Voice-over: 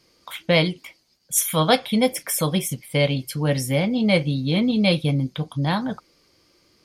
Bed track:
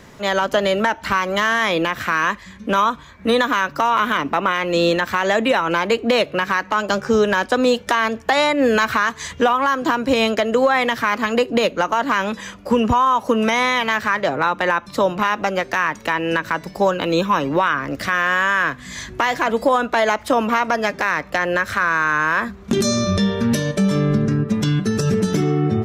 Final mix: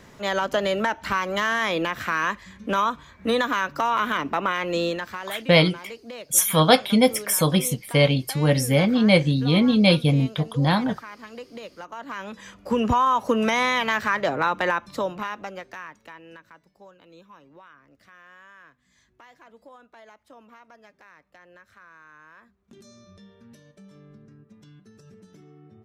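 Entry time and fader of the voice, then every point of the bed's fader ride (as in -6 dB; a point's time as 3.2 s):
5.00 s, +2.0 dB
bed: 4.7 s -5.5 dB
5.56 s -21.5 dB
11.75 s -21.5 dB
12.89 s -4 dB
14.64 s -4 dB
16.8 s -32 dB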